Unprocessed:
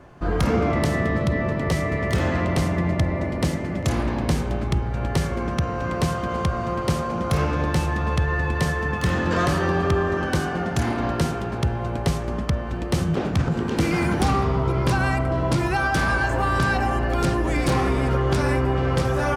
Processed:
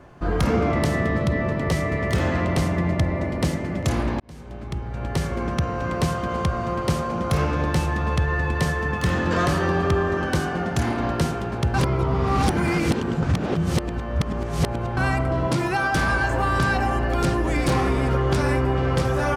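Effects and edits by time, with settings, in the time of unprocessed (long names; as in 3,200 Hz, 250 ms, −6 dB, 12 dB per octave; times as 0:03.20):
0:04.20–0:05.43: fade in
0:11.74–0:14.97: reverse
0:15.47–0:15.94: high-pass filter 120 Hz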